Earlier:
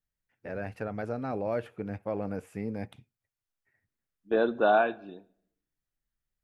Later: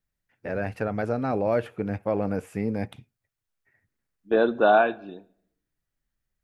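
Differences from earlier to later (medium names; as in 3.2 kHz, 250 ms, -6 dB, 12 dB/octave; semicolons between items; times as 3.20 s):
first voice +7.0 dB; second voice +4.5 dB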